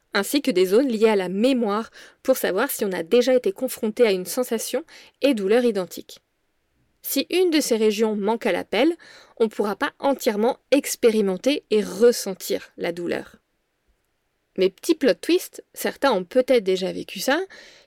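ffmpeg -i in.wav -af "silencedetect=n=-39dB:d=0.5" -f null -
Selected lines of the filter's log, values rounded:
silence_start: 6.17
silence_end: 7.04 | silence_duration: 0.87
silence_start: 13.34
silence_end: 14.56 | silence_duration: 1.22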